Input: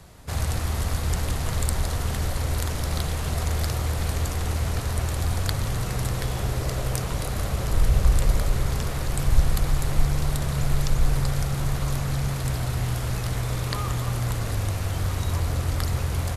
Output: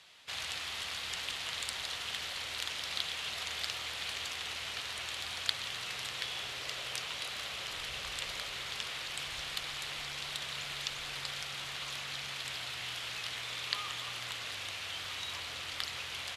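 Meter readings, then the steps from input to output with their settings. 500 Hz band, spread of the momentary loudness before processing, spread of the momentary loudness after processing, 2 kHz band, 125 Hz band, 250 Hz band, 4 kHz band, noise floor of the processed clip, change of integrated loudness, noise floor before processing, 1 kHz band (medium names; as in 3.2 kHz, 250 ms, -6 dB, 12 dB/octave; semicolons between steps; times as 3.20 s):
-17.0 dB, 4 LU, 3 LU, -2.0 dB, -31.5 dB, -25.0 dB, +2.0 dB, -42 dBFS, -10.5 dB, -29 dBFS, -10.5 dB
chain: band-pass filter 3.1 kHz, Q 2.2; trim +5 dB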